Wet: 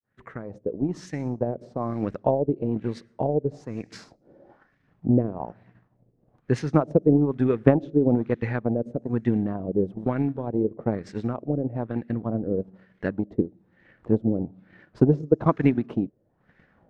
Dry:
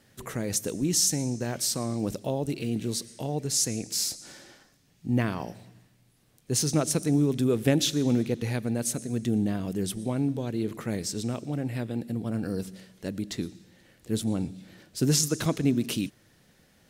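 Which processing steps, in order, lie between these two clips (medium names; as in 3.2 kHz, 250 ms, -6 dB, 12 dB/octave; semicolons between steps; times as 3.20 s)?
fade-in on the opening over 1.31 s; transient shaper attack +8 dB, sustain -8 dB; LFO low-pass sine 1.1 Hz 480–1900 Hz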